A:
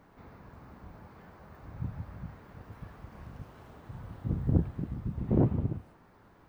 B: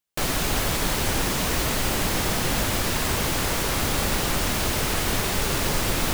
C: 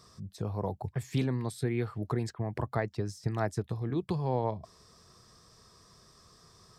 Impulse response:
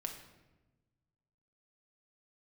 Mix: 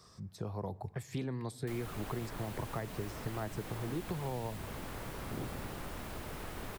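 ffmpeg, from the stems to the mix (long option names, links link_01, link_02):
-filter_complex "[0:a]volume=-16dB,asplit=2[link_01][link_02];[link_02]volume=-13.5dB[link_03];[1:a]equalizer=frequency=5800:width=1.2:gain=-5,adelay=1500,volume=-17dB[link_04];[2:a]volume=-3dB,asplit=3[link_05][link_06][link_07];[link_06]volume=-14dB[link_08];[link_07]apad=whole_len=285769[link_09];[link_01][link_09]sidechaincompress=threshold=-54dB:ratio=8:attack=50:release=208[link_10];[3:a]atrim=start_sample=2205[link_11];[link_03][link_08]amix=inputs=2:normalize=0[link_12];[link_12][link_11]afir=irnorm=-1:irlink=0[link_13];[link_10][link_04][link_05][link_13]amix=inputs=4:normalize=0,acrossover=split=270|1800[link_14][link_15][link_16];[link_14]acompressor=threshold=-39dB:ratio=4[link_17];[link_15]acompressor=threshold=-39dB:ratio=4[link_18];[link_16]acompressor=threshold=-51dB:ratio=4[link_19];[link_17][link_18][link_19]amix=inputs=3:normalize=0"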